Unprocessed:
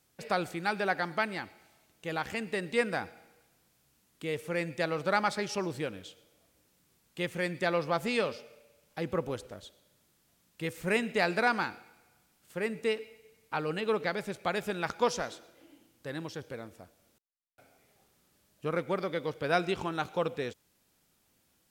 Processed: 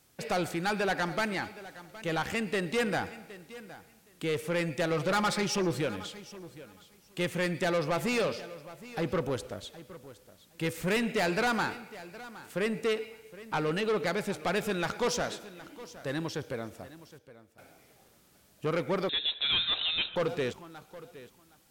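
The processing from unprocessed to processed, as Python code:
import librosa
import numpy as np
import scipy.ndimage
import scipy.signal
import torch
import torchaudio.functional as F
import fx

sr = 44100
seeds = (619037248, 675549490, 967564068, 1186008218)

y = fx.comb(x, sr, ms=5.7, depth=0.64, at=(4.9, 5.81))
y = 10.0 ** (-30.0 / 20.0) * np.tanh(y / 10.0 ** (-30.0 / 20.0))
y = fx.echo_feedback(y, sr, ms=766, feedback_pct=16, wet_db=-17)
y = fx.freq_invert(y, sr, carrier_hz=3900, at=(19.09, 20.16))
y = y * librosa.db_to_amplitude(6.0)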